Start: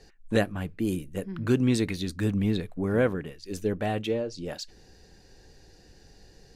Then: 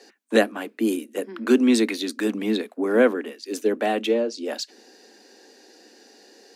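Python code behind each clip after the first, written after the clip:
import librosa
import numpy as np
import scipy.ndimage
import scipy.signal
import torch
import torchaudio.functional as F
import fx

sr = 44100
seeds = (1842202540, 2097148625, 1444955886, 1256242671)

y = scipy.signal.sosfilt(scipy.signal.butter(16, 220.0, 'highpass', fs=sr, output='sos'), x)
y = y * 10.0 ** (7.0 / 20.0)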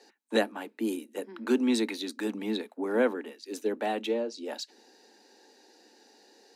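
y = fx.small_body(x, sr, hz=(880.0, 3900.0), ring_ms=40, db=11)
y = y * 10.0 ** (-8.0 / 20.0)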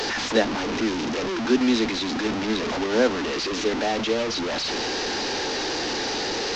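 y = fx.delta_mod(x, sr, bps=32000, step_db=-25.5)
y = y * 10.0 ** (5.0 / 20.0)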